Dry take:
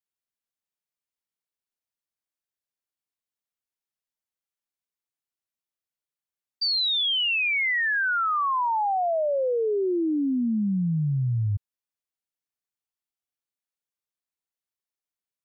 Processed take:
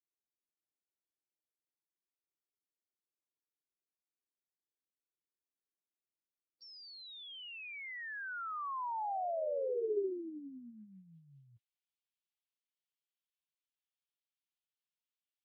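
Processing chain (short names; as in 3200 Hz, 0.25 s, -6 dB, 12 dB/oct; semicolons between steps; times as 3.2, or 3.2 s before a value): formant-preserving pitch shift +3 st; band-pass sweep 350 Hz -> 3100 Hz, 9.91–11.2; gain +2 dB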